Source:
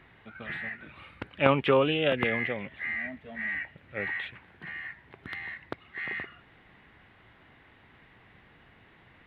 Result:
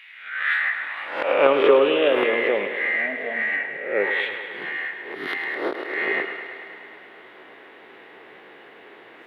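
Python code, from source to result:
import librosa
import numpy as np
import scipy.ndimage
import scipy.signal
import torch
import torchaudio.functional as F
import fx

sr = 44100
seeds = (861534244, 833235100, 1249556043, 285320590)

p1 = fx.spec_swells(x, sr, rise_s=0.57)
p2 = fx.high_shelf(p1, sr, hz=3800.0, db=-12.0, at=(3.56, 4.11))
p3 = fx.over_compress(p2, sr, threshold_db=-32.0, ratio=-0.5)
p4 = p2 + F.gain(torch.from_numpy(p3), 0.0).numpy()
p5 = fx.filter_sweep_highpass(p4, sr, from_hz=2600.0, to_hz=400.0, start_s=0.0, end_s=1.52, q=2.7)
p6 = p5 + fx.echo_thinned(p5, sr, ms=105, feedback_pct=77, hz=210.0, wet_db=-10.0, dry=0)
y = fx.end_taper(p6, sr, db_per_s=150.0)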